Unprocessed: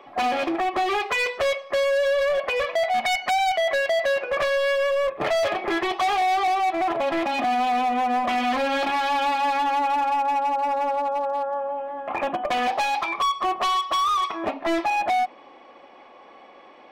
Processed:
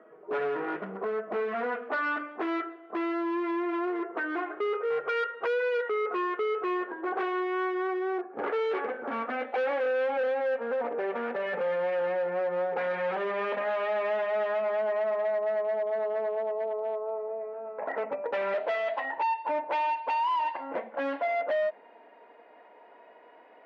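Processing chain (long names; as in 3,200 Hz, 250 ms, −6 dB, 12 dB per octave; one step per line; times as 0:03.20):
gliding playback speed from 57% → 86%
band-pass filter 390–2,400 Hz
level −5 dB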